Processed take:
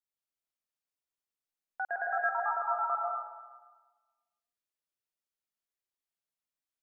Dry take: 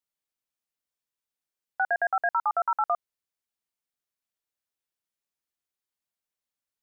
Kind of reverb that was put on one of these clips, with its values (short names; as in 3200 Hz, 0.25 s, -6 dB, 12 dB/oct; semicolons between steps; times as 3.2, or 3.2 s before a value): digital reverb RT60 1.3 s, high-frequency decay 0.9×, pre-delay 90 ms, DRR -2 dB; gain -9 dB